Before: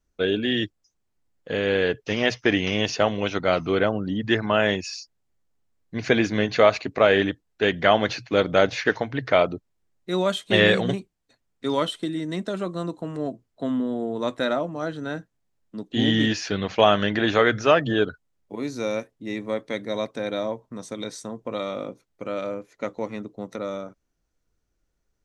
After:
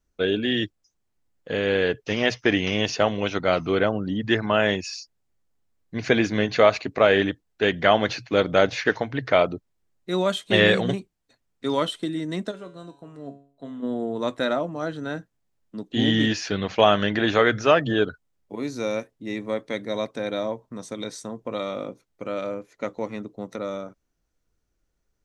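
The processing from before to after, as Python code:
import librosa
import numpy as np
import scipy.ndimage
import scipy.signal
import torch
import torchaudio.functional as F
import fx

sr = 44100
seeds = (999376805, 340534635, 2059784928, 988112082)

y = fx.comb_fb(x, sr, f0_hz=140.0, decay_s=0.49, harmonics='all', damping=0.0, mix_pct=80, at=(12.5, 13.82), fade=0.02)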